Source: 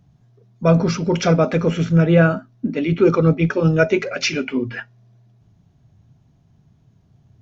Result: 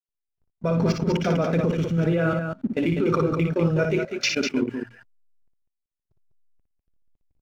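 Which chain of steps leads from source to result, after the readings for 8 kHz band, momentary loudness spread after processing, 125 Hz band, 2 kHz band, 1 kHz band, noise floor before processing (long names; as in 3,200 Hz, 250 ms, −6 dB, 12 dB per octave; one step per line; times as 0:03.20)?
can't be measured, 6 LU, −6.5 dB, −6.0 dB, −5.0 dB, −57 dBFS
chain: slack as between gear wheels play −38.5 dBFS
output level in coarse steps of 22 dB
loudspeakers that aren't time-aligned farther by 20 metres −5 dB, 68 metres −6 dB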